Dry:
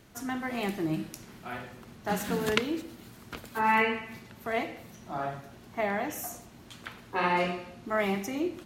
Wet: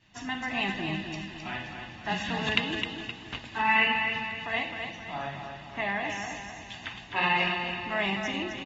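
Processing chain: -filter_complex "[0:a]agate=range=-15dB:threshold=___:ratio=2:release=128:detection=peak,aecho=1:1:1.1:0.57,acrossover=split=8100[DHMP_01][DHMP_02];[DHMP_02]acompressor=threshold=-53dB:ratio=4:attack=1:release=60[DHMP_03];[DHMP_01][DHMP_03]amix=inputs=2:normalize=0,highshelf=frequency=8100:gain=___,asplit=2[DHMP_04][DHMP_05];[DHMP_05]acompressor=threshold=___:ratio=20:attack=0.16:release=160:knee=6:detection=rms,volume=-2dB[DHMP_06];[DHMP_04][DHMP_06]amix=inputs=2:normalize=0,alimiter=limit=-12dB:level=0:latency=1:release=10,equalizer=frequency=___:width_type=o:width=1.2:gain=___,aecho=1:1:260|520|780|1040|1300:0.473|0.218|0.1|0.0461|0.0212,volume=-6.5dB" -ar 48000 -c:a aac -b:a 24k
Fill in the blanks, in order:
-46dB, -3.5, -35dB, 2800, 13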